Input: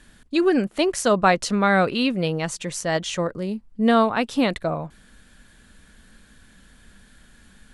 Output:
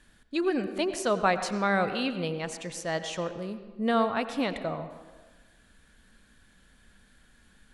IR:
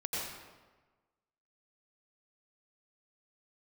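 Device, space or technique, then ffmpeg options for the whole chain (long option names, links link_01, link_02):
filtered reverb send: -filter_complex "[0:a]asplit=2[link_01][link_02];[link_02]highpass=frequency=200:width=0.5412,highpass=frequency=200:width=1.3066,lowpass=5300[link_03];[1:a]atrim=start_sample=2205[link_04];[link_03][link_04]afir=irnorm=-1:irlink=0,volume=-12dB[link_05];[link_01][link_05]amix=inputs=2:normalize=0,volume=-8.5dB"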